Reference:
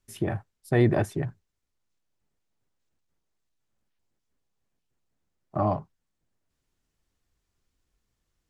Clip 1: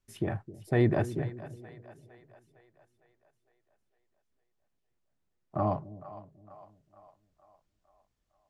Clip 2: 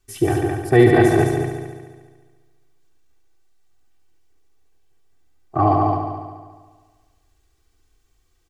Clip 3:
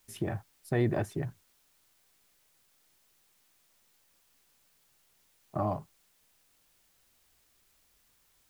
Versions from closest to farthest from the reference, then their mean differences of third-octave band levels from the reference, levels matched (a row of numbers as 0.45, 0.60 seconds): 1, 3, 2; 1.5, 3.0, 8.0 decibels